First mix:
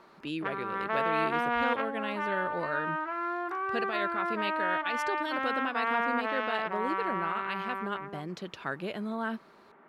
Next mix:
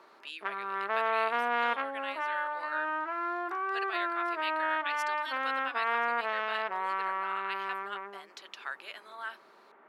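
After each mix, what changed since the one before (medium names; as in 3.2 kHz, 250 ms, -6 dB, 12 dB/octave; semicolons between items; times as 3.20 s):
speech: add high-pass 1.3 kHz 12 dB/octave; master: add high-pass 350 Hz 12 dB/octave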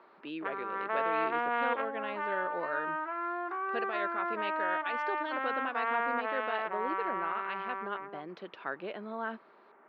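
speech: remove high-pass 1.3 kHz 12 dB/octave; master: add distance through air 330 m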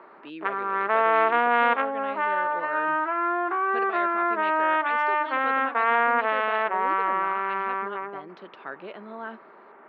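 background +10.0 dB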